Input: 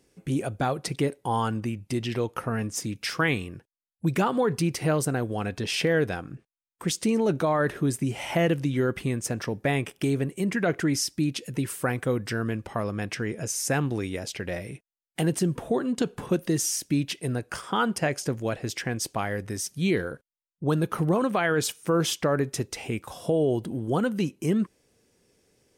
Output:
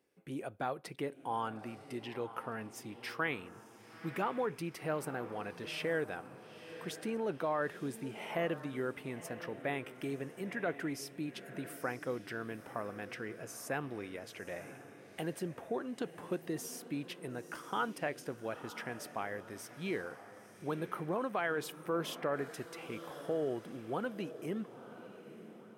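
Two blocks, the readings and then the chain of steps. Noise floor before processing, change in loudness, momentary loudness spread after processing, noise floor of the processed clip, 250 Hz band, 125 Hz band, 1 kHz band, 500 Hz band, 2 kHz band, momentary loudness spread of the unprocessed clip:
under -85 dBFS, -12.0 dB, 10 LU, -56 dBFS, -14.0 dB, -18.0 dB, -8.5 dB, -10.5 dB, -9.5 dB, 8 LU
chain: high-pass 520 Hz 6 dB/octave; peaking EQ 6.7 kHz -13 dB 1.7 oct; echo that smears into a reverb 958 ms, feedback 44%, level -13 dB; trim -7 dB

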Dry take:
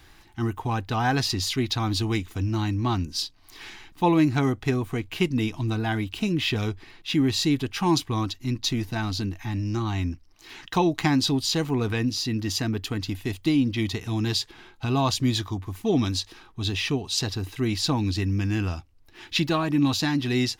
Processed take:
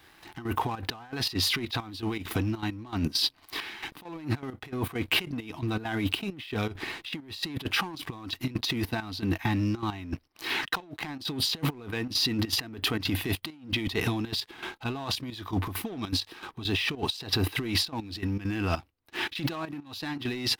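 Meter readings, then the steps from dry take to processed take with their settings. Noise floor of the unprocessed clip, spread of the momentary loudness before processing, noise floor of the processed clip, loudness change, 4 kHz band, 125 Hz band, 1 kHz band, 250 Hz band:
-54 dBFS, 9 LU, -58 dBFS, -5.0 dB, -1.0 dB, -7.5 dB, -6.0 dB, -7.5 dB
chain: high-pass 250 Hz 6 dB/octave; peaking EQ 6.8 kHz -13.5 dB 0.66 oct; compressor with a negative ratio -37 dBFS, ratio -1; waveshaping leveller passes 2; trance gate "...xx.xxxx.x" 200 bpm -12 dB

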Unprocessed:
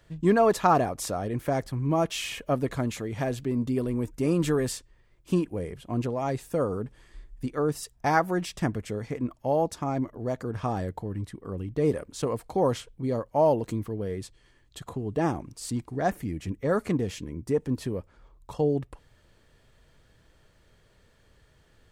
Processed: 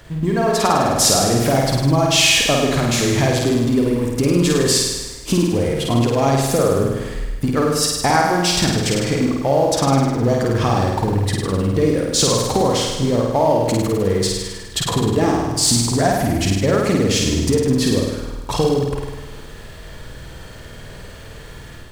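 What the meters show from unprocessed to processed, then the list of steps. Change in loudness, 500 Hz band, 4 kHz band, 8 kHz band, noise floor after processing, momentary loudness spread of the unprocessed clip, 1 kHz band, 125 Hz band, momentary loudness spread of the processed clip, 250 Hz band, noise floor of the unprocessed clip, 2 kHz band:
+11.5 dB, +9.5 dB, +22.0 dB, +21.0 dB, -36 dBFS, 11 LU, +9.0 dB, +12.0 dB, 8 LU, +10.5 dB, -62 dBFS, +13.0 dB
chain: companding laws mixed up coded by mu; compression 5:1, threshold -30 dBFS, peak gain reduction 13 dB; dynamic bell 4.9 kHz, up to +8 dB, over -56 dBFS, Q 0.85; on a send: flutter echo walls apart 8.8 m, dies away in 1.2 s; on the sum: level rider gain up to 5 dB; trim +8.5 dB

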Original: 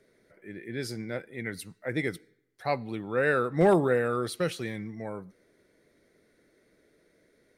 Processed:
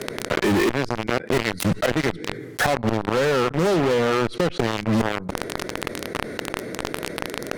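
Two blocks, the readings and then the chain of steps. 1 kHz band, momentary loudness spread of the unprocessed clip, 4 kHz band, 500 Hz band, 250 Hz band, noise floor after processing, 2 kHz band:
+8.5 dB, 16 LU, +15.0 dB, +6.5 dB, +9.0 dB, -37 dBFS, +8.0 dB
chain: high-pass 69 Hz 24 dB/octave; low-pass that closes with the level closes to 1.2 kHz, closed at -20.5 dBFS; treble shelf 2.1 kHz -10 dB; inverted gate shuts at -30 dBFS, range -27 dB; in parallel at -6 dB: fuzz box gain 58 dB, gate -58 dBFS; on the sum: level flattener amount 70%; trim +1 dB

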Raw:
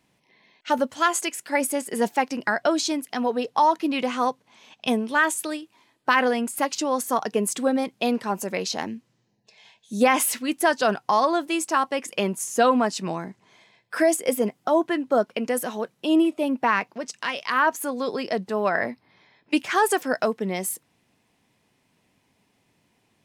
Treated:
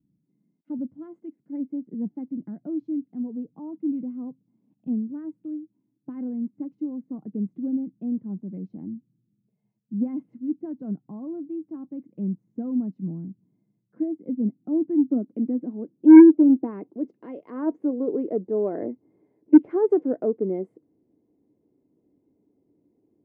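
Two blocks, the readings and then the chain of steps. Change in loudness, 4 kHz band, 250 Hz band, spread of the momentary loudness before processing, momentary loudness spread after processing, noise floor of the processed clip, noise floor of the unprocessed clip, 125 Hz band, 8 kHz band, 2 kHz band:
+0.5 dB, under -40 dB, +6.0 dB, 10 LU, 18 LU, -74 dBFS, -69 dBFS, +1.0 dB, under -40 dB, under -20 dB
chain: low-pass sweep 180 Hz -> 430 Hz, 13.72–17.48 s; small resonant body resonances 300/2100 Hz, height 12 dB, ringing for 45 ms; Chebyshev shaper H 5 -23 dB, 7 -27 dB, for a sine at 5.5 dBFS; trim -6.5 dB

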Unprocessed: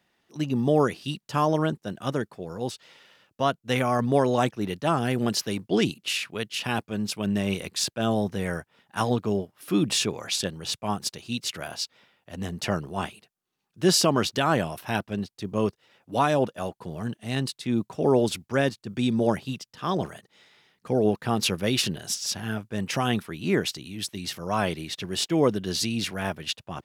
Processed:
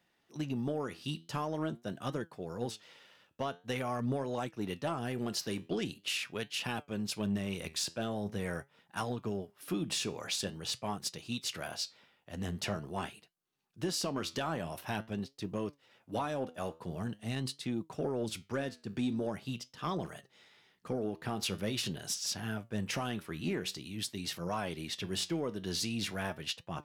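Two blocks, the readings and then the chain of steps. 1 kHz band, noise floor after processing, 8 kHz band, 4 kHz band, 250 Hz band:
-11.5 dB, -72 dBFS, -8.5 dB, -8.5 dB, -10.0 dB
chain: compression 12:1, threshold -25 dBFS, peak gain reduction 11 dB; flange 0.45 Hz, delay 5.7 ms, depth 7.3 ms, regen +78%; saturation -23 dBFS, distortion -21 dB

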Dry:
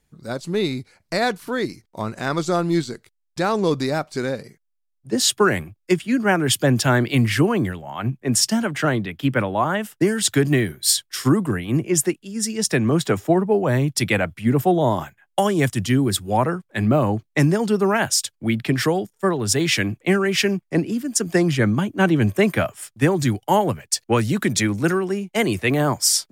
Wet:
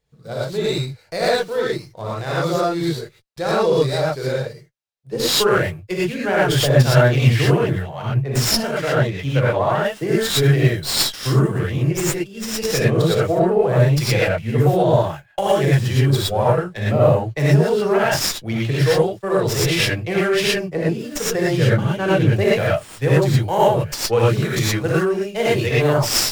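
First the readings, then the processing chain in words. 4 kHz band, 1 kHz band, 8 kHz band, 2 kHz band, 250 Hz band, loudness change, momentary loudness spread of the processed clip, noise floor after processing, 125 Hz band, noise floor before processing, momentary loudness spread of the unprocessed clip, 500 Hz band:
+2.5 dB, +1.0 dB, -3.0 dB, +1.0 dB, -2.0 dB, +2.0 dB, 8 LU, -47 dBFS, +5.5 dB, -72 dBFS, 8 LU, +4.5 dB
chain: ten-band graphic EQ 125 Hz +8 dB, 250 Hz -10 dB, 500 Hz +10 dB, 4 kHz +5 dB; gated-style reverb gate 140 ms rising, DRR -7.5 dB; sliding maximum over 3 samples; trim -8.5 dB

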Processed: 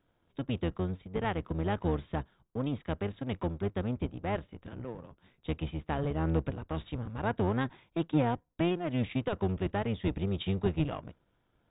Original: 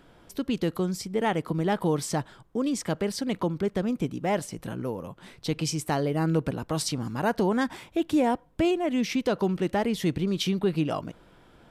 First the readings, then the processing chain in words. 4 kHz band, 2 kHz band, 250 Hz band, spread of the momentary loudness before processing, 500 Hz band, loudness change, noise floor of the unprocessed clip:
-10.0 dB, -6.0 dB, -6.5 dB, 8 LU, -6.5 dB, -5.5 dB, -56 dBFS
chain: octave divider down 1 oct, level 0 dB; power-law waveshaper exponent 1.4; brick-wall FIR low-pass 3.8 kHz; trim -4 dB

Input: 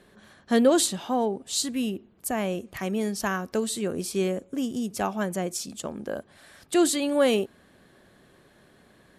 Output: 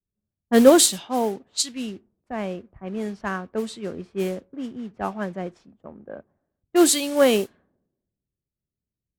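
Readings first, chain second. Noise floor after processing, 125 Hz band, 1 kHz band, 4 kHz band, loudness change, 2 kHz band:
under -85 dBFS, -1.0 dB, +2.0 dB, +4.5 dB, +5.0 dB, +1.5 dB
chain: modulation noise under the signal 16 dB; level-controlled noise filter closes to 370 Hz, open at -21 dBFS; three bands expanded up and down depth 100%; trim -1 dB

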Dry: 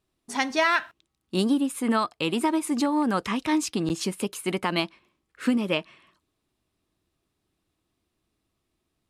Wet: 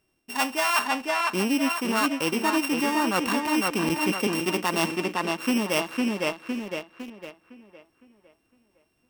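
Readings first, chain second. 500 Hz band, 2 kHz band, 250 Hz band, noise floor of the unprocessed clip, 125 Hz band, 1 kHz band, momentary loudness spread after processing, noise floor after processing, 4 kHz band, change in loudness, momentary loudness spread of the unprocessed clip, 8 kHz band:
+1.5 dB, +3.0 dB, 0.0 dB, -79 dBFS, -0.5 dB, +2.5 dB, 10 LU, -71 dBFS, +3.0 dB, +1.0 dB, 7 LU, +3.5 dB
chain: sorted samples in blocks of 16 samples; bass shelf 160 Hz -7.5 dB; tape echo 508 ms, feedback 44%, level -5 dB, low-pass 3.8 kHz; in parallel at -11.5 dB: bit crusher 7-bit; on the sum: dynamic bell 1 kHz, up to +6 dB, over -40 dBFS, Q 1.3; reverse; compression 5:1, threshold -29 dBFS, peak gain reduction 14 dB; reverse; trim +7 dB

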